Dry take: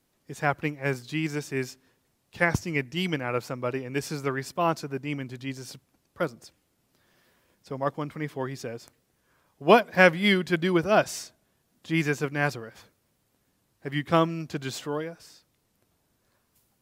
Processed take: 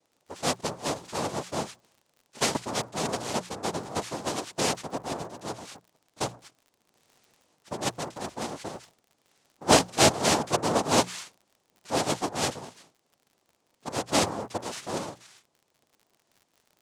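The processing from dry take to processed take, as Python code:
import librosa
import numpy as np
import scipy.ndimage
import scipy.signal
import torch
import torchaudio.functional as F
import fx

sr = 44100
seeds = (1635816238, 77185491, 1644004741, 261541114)

y = fx.noise_vocoder(x, sr, seeds[0], bands=2)
y = fx.dmg_crackle(y, sr, seeds[1], per_s=53.0, level_db=-44.0)
y = fx.hum_notches(y, sr, base_hz=60, count=3)
y = F.gain(torch.from_numpy(y), -2.0).numpy()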